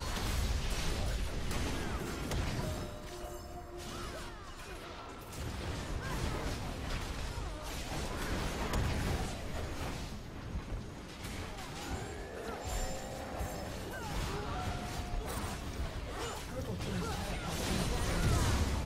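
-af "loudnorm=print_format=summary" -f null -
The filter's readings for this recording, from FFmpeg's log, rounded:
Input Integrated:    -38.3 LUFS
Input True Peak:     -19.5 dBTP
Input LRA:             5.9 LU
Input Threshold:     -48.3 LUFS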